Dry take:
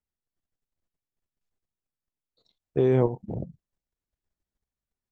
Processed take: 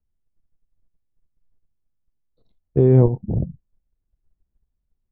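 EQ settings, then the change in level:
high-frequency loss of the air 150 metres
spectral tilt −4 dB per octave
0.0 dB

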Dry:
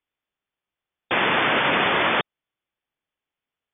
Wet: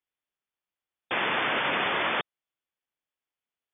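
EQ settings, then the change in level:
low-shelf EQ 360 Hz −4.5 dB
−6.0 dB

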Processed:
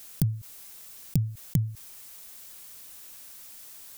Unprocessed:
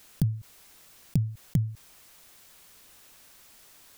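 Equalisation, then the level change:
high-shelf EQ 5,600 Hz +10.5 dB
0.0 dB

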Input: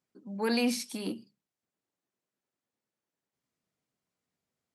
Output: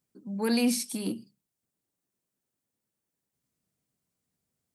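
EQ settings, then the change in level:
low-shelf EQ 260 Hz +11.5 dB
high-shelf EQ 6,600 Hz +12 dB
parametric band 8,800 Hz +4.5 dB 0.22 octaves
−2.5 dB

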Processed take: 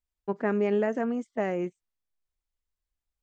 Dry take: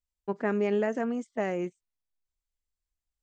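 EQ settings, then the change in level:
high-shelf EQ 3,600 Hz −7 dB
+1.5 dB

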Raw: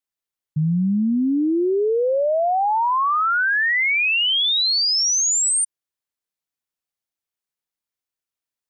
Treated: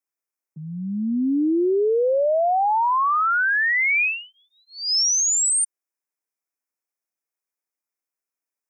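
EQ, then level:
high-pass filter 240 Hz 24 dB per octave
elliptic band-stop filter 2,500–5,100 Hz
0.0 dB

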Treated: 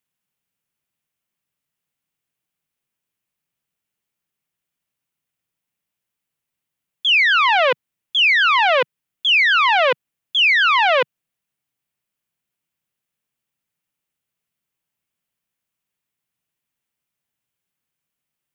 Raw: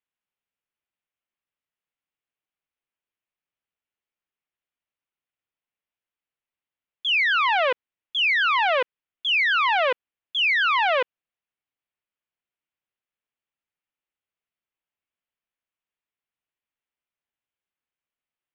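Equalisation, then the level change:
parametric band 150 Hz +11.5 dB 1.4 octaves
high-shelf EQ 5,100 Hz +9.5 dB
+4.5 dB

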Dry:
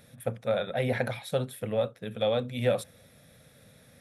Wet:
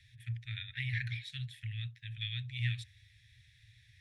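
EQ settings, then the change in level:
Chebyshev band-stop filter 120–1,800 Hz, order 5
high-frequency loss of the air 120 metres
+1.0 dB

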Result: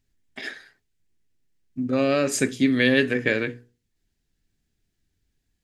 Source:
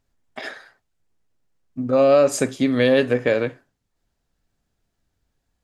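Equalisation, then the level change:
mains-hum notches 60/120/180/240/300/360/420/480 Hz
dynamic equaliser 1,500 Hz, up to +6 dB, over −32 dBFS, Q 0.94
flat-topped bell 830 Hz −11 dB
0.0 dB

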